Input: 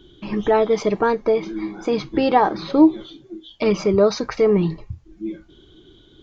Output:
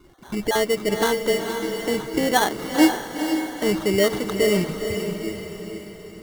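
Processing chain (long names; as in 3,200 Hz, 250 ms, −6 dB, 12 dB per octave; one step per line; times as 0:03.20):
time-frequency cells dropped at random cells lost 23%
sample-rate reduction 2,500 Hz, jitter 0%
feedback delay with all-pass diffusion 477 ms, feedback 49%, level −6 dB
level −3.5 dB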